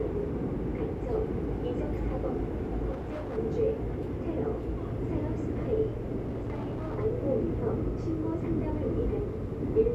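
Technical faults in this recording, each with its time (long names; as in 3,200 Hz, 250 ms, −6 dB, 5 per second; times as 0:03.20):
0:02.91–0:03.38: clipping −32.5 dBFS
0:06.21–0:06.96: clipping −30.5 dBFS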